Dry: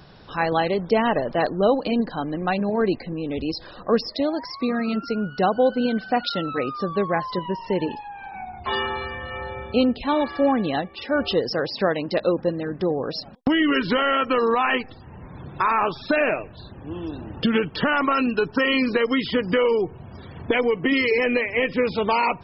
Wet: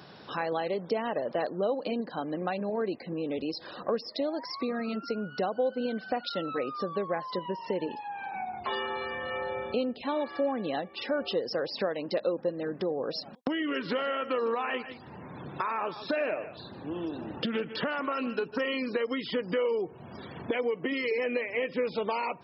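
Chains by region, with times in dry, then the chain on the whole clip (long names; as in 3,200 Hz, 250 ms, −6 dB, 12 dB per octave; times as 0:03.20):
0:13.67–0:18.66: single-tap delay 152 ms −16 dB + highs frequency-modulated by the lows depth 0.12 ms
whole clip: high-pass filter 180 Hz 12 dB per octave; downward compressor 3 to 1, threshold −33 dBFS; dynamic equaliser 540 Hz, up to +5 dB, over −44 dBFS, Q 2.3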